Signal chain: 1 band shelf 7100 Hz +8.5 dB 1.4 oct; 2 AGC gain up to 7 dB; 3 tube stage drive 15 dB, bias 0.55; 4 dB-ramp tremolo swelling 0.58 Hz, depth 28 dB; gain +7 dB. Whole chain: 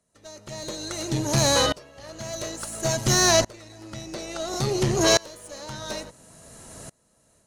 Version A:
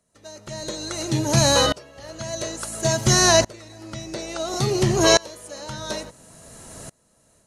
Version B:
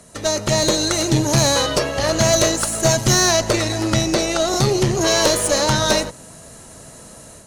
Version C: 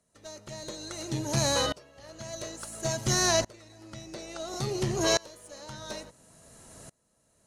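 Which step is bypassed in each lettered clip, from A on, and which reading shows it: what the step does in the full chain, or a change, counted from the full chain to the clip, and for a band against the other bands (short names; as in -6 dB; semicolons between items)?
3, loudness change +3.0 LU; 4, momentary loudness spread change -15 LU; 2, crest factor change +2.0 dB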